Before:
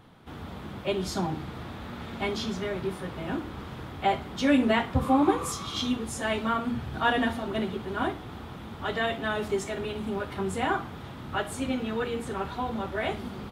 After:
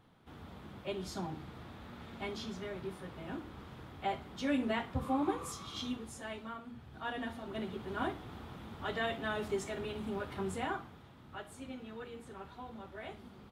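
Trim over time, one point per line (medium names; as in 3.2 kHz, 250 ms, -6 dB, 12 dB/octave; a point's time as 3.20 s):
5.90 s -10.5 dB
6.69 s -19 dB
7.92 s -7 dB
10.50 s -7 dB
11.08 s -16 dB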